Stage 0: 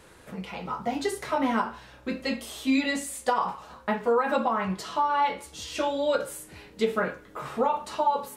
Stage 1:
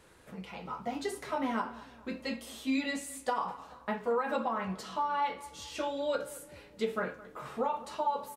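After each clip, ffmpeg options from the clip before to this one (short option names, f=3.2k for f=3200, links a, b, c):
-filter_complex "[0:a]asplit=2[a][b];[b]adelay=216,lowpass=f=2k:p=1,volume=-18dB,asplit=2[c][d];[d]adelay=216,lowpass=f=2k:p=1,volume=0.5,asplit=2[e][f];[f]adelay=216,lowpass=f=2k:p=1,volume=0.5,asplit=2[g][h];[h]adelay=216,lowpass=f=2k:p=1,volume=0.5[i];[a][c][e][g][i]amix=inputs=5:normalize=0,volume=-7dB"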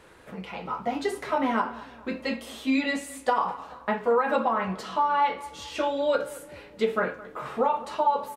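-af "bass=f=250:g=-4,treble=f=4k:g=-7,volume=8dB"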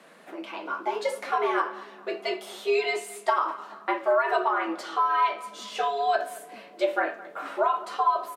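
-af "afreqshift=140"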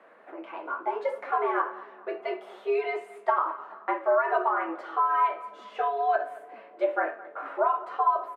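-filter_complex "[0:a]acrossover=split=300 2100:gain=0.1 1 0.0631[a][b][c];[a][b][c]amix=inputs=3:normalize=0"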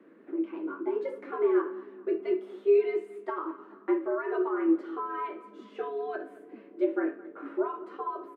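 -af "lowshelf=f=470:t=q:w=3:g=13.5,volume=-7.5dB"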